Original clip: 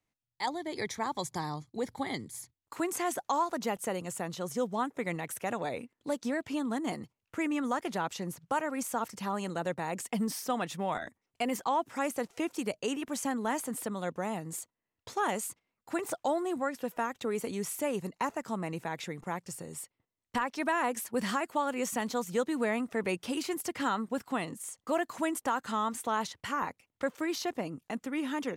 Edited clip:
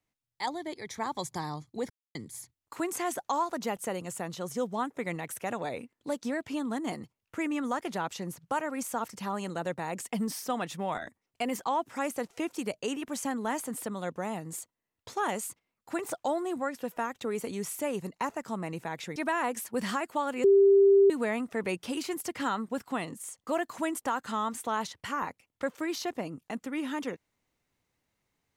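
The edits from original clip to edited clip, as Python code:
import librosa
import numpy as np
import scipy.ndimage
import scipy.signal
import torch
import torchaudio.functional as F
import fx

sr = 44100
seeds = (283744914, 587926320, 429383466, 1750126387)

y = fx.edit(x, sr, fx.fade_in_from(start_s=0.74, length_s=0.25, floor_db=-17.0),
    fx.silence(start_s=1.9, length_s=0.25),
    fx.cut(start_s=19.16, length_s=1.4),
    fx.bleep(start_s=21.84, length_s=0.66, hz=395.0, db=-16.0), tone=tone)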